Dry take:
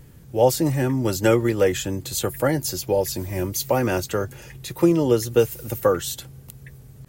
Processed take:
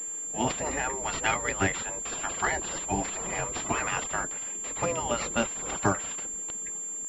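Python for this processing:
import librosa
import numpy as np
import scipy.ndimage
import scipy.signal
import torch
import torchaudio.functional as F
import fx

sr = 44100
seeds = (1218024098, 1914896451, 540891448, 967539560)

p1 = fx.rider(x, sr, range_db=5, speed_s=2.0)
p2 = x + (p1 * librosa.db_to_amplitude(-0.5))
p3 = fx.spec_gate(p2, sr, threshold_db=-15, keep='weak')
p4 = fx.pwm(p3, sr, carrier_hz=7300.0)
y = p4 * librosa.db_to_amplitude(-2.5)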